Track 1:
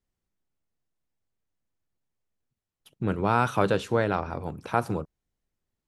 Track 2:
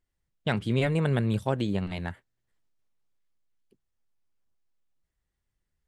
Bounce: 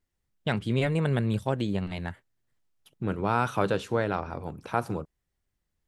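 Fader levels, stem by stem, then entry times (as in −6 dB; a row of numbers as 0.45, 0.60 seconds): −2.5, −0.5 decibels; 0.00, 0.00 seconds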